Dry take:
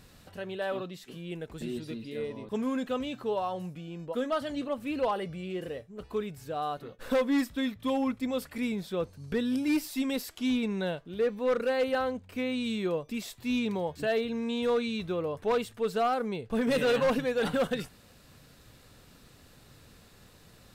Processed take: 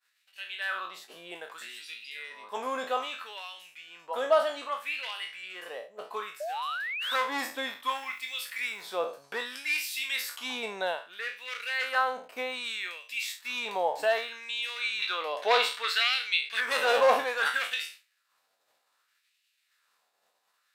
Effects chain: spectral sustain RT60 0.41 s; expander -41 dBFS; LFO high-pass sine 0.63 Hz 680–2600 Hz; 6.40–7.16 s: painted sound rise 570–4000 Hz -36 dBFS; 7.88–8.82 s: word length cut 10-bit, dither none; 15.02–16.61 s: ten-band graphic EQ 125 Hz -11 dB, 1 kHz -4 dB, 2 kHz +7 dB, 4 kHz +12 dB; trim +2 dB

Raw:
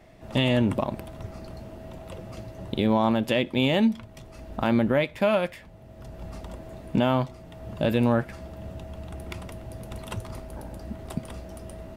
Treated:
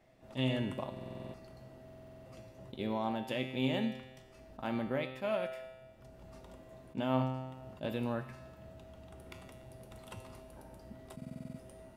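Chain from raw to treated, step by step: bass shelf 97 Hz -6 dB; feedback comb 130 Hz, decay 1.2 s, harmonics all, mix 80%; reverberation RT60 0.70 s, pre-delay 30 ms, DRR 19 dB; buffer glitch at 0.92/1.84/11.17 s, samples 2048, times 8; attacks held to a fixed rise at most 340 dB/s

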